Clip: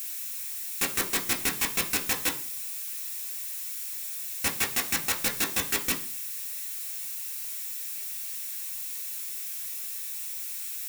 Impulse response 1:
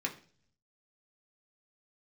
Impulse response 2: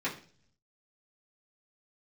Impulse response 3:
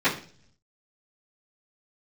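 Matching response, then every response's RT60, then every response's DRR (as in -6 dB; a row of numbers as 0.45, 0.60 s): 1; 0.45, 0.45, 0.45 s; -0.5, -9.0, -18.5 dB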